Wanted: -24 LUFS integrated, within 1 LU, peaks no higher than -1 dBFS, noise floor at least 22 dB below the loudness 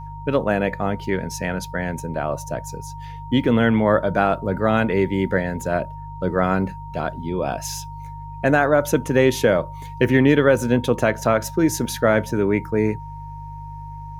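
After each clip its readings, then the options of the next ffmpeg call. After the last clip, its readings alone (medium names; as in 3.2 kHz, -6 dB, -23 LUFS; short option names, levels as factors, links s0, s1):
hum 50 Hz; highest harmonic 150 Hz; hum level -34 dBFS; steady tone 930 Hz; tone level -36 dBFS; loudness -21.0 LUFS; peak level -4.0 dBFS; loudness target -24.0 LUFS
-> -af "bandreject=f=50:t=h:w=4,bandreject=f=100:t=h:w=4,bandreject=f=150:t=h:w=4"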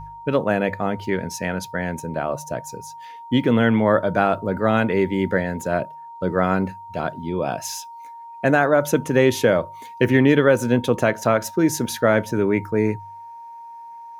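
hum not found; steady tone 930 Hz; tone level -36 dBFS
-> -af "bandreject=f=930:w=30"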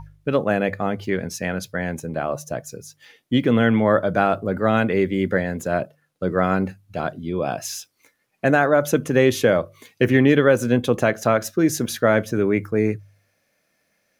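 steady tone not found; loudness -21.0 LUFS; peak level -4.5 dBFS; loudness target -24.0 LUFS
-> -af "volume=0.708"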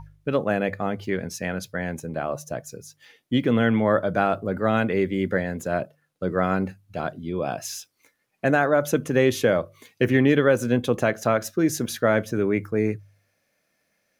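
loudness -24.0 LUFS; peak level -7.5 dBFS; noise floor -72 dBFS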